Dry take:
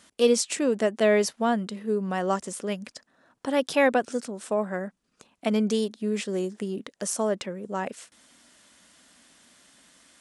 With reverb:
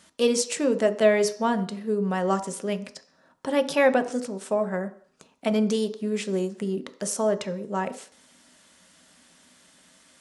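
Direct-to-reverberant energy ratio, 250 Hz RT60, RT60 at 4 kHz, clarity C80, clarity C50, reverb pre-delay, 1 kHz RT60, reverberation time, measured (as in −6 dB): 8.0 dB, 0.50 s, 0.60 s, 18.0 dB, 15.0 dB, 3 ms, 0.55 s, 0.55 s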